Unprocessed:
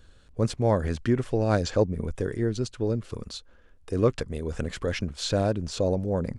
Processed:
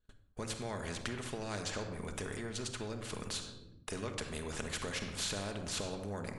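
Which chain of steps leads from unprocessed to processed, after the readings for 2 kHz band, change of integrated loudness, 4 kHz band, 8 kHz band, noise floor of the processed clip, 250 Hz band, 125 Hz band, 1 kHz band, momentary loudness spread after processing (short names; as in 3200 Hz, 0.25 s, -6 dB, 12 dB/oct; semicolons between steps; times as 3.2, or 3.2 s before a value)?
-4.0 dB, -12.5 dB, -3.5 dB, 0.0 dB, -61 dBFS, -14.5 dB, -15.5 dB, -10.0 dB, 6 LU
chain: gate -47 dBFS, range -39 dB; bell 5200 Hz -5.5 dB 0.31 oct; compressor 4:1, threshold -31 dBFS, peak gain reduction 13 dB; shoebox room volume 2300 m³, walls furnished, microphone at 1.4 m; spectral compressor 2:1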